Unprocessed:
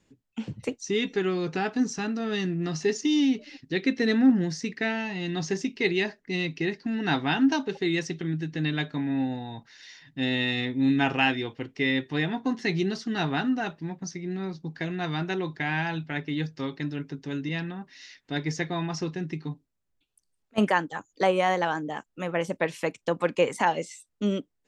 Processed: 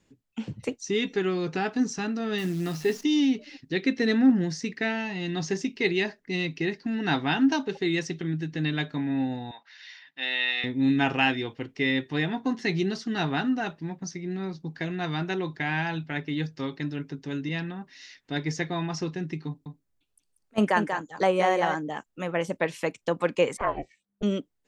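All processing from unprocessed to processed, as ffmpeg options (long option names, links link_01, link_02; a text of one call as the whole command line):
ffmpeg -i in.wav -filter_complex "[0:a]asettb=1/sr,asplit=3[link_01][link_02][link_03];[link_01]atrim=end=2.384[link_04];[link_02]atrim=start=2.38:end=3.04,asetpts=PTS-STARTPTS,afade=type=in:duration=0.004:curve=qsin,afade=type=out:start_time=0.656:duration=0.004:curve=qsin,acrossover=split=4200[link_05][link_06];[link_06]acompressor=threshold=-47dB:ratio=4:attack=1:release=60[link_07];[link_05][link_07]amix=inputs=2:normalize=0,bandreject=frequency=50:width_type=h:width=6,bandreject=frequency=100:width_type=h:width=6,bandreject=frequency=150:width_type=h:width=6,bandreject=frequency=200:width_type=h:width=6,bandreject=frequency=250:width_type=h:width=6,acrusher=bits=8:dc=4:mix=0:aa=0.000001[link_08];[link_03]atrim=start=3.036[link_09];[link_04][link_08]acrossfade=duration=0.004:curve1=hsin:curve2=qsin[link_10];[link_10][link_09]acrossfade=duration=0.004:curve1=qsin:curve2=hsin,asettb=1/sr,asplit=3[link_11][link_12][link_13];[link_11]atrim=end=9.514[link_14];[link_12]atrim=start=9.51:end=10.64,asetpts=PTS-STARTPTS,afade=type=in:duration=0.004:curve=qsin,afade=type=out:start_time=1.126:duration=0.004:curve=qsin,highpass=790,lowpass=4000,equalizer=frequency=2900:width=0.55:gain=4[link_15];[link_13]atrim=start=10.636[link_16];[link_14][link_15]acrossfade=duration=0.004:curve1=hsin:curve2=qsin[link_17];[link_17][link_16]acrossfade=duration=0.004:curve1=qsin:curve2=hsin,asettb=1/sr,asplit=3[link_18][link_19][link_20];[link_18]atrim=end=19.474[link_21];[link_19]atrim=start=19.47:end=21.75,asetpts=PTS-STARTPTS,afade=type=in:duration=0.004:curve=qsin,afade=type=out:start_time=2.276:duration=0.004:curve=qsin,equalizer=frequency=3100:width=1.4:gain=-2.5,aecho=1:1:188:0.473,atrim=end_sample=100548[link_22];[link_20]atrim=start=21.746[link_23];[link_21][link_22]acrossfade=duration=0.004:curve1=hsin:curve2=qsin[link_24];[link_24][link_23]acrossfade=duration=0.004:curve1=qsin:curve2=hsin,asettb=1/sr,asplit=3[link_25][link_26][link_27];[link_25]atrim=end=23.574[link_28];[link_26]atrim=start=23.57:end=24.23,asetpts=PTS-STARTPTS,afade=type=in:duration=0.004:curve=qsin,afade=type=out:start_time=0.656:duration=0.004:curve=qsin,lowpass=1600,aeval=exprs='val(0)*sin(2*PI*200*n/s)':channel_layout=same[link_29];[link_27]atrim=start=24.226[link_30];[link_28][link_29]acrossfade=duration=0.004:curve1=hsin:curve2=qsin[link_31];[link_31][link_30]acrossfade=duration=0.004:curve1=qsin:curve2=hsin" out.wav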